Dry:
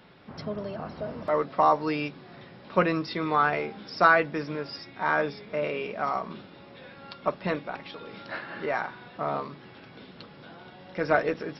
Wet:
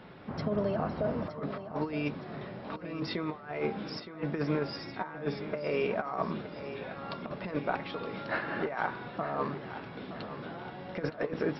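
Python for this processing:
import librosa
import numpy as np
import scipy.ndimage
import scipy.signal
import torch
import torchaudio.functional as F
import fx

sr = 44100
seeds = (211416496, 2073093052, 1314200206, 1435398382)

p1 = fx.over_compress(x, sr, threshold_db=-32.0, ratio=-0.5)
p2 = fx.high_shelf(p1, sr, hz=3100.0, db=-11.5)
y = p2 + fx.echo_feedback(p2, sr, ms=917, feedback_pct=46, wet_db=-12.0, dry=0)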